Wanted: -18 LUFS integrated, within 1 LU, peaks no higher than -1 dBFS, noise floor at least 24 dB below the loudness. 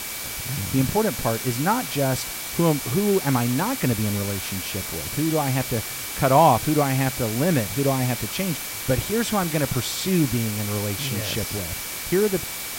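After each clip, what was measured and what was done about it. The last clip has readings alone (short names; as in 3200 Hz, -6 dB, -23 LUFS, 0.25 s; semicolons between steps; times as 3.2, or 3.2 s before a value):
steady tone 2300 Hz; tone level -41 dBFS; noise floor -32 dBFS; noise floor target -47 dBFS; loudness -23.0 LUFS; peak -4.5 dBFS; loudness target -18.0 LUFS
-> notch 2300 Hz, Q 30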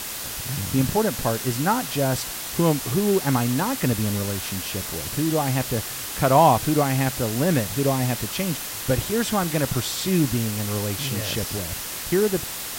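steady tone none; noise floor -32 dBFS; noise floor target -47 dBFS
-> denoiser 15 dB, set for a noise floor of -32 dBFS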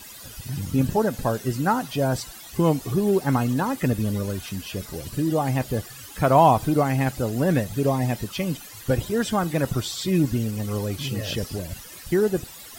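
noise floor -42 dBFS; noise floor target -48 dBFS
-> denoiser 6 dB, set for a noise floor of -42 dBFS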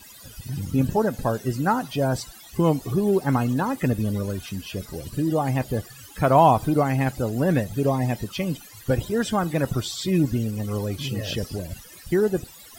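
noise floor -46 dBFS; noise floor target -48 dBFS
-> denoiser 6 dB, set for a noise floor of -46 dBFS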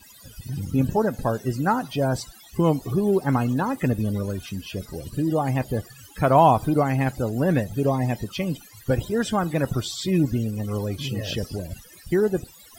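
noise floor -49 dBFS; loudness -24.0 LUFS; peak -5.0 dBFS; loudness target -18.0 LUFS
-> gain +6 dB; limiter -1 dBFS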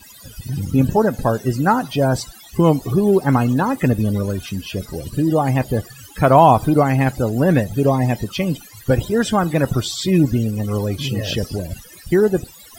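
loudness -18.5 LUFS; peak -1.0 dBFS; noise floor -43 dBFS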